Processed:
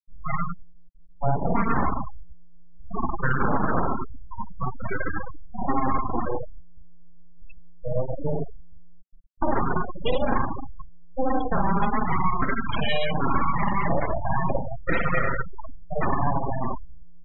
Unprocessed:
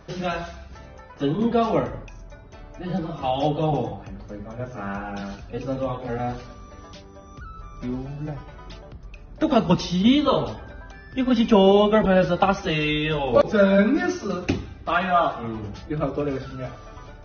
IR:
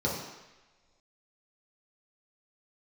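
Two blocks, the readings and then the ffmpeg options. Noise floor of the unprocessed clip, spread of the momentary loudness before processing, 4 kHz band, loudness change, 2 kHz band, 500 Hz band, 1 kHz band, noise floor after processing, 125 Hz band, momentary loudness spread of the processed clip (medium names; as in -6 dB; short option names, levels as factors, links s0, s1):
-44 dBFS, 21 LU, -8.0 dB, -4.5 dB, 0.0 dB, -8.0 dB, 0.0 dB, -41 dBFS, -1.5 dB, 14 LU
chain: -filter_complex "[0:a]lowpass=5400,acrossover=split=280 4000:gain=0.126 1 0.0794[s0][s1][s2];[s0][s1][s2]amix=inputs=3:normalize=0,aecho=1:1:7.5:0.64,asplit=2[s3][s4];[s4]adelay=436,lowpass=f=2700:p=1,volume=0.0708,asplit=2[s5][s6];[s6]adelay=436,lowpass=f=2700:p=1,volume=0.51,asplit=2[s7][s8];[s8]adelay=436,lowpass=f=2700:p=1,volume=0.51[s9];[s3][s5][s7][s9]amix=inputs=4:normalize=0,alimiter=limit=0.266:level=0:latency=1:release=328,asplit=2[s10][s11];[1:a]atrim=start_sample=2205,adelay=45[s12];[s11][s12]afir=irnorm=-1:irlink=0,volume=0.299[s13];[s10][s13]amix=inputs=2:normalize=0,aeval=exprs='abs(val(0))':c=same,dynaudnorm=f=250:g=9:m=2.51,bandreject=f=50:t=h:w=6,bandreject=f=100:t=h:w=6,bandreject=f=150:t=h:w=6,bandreject=f=200:t=h:w=6,afftfilt=real='re*gte(hypot(re,im),0.158)':imag='im*gte(hypot(re,im),0.158)':win_size=1024:overlap=0.75,equalizer=f=180:w=2.5:g=5.5,acompressor=threshold=0.112:ratio=4,volume=1.19"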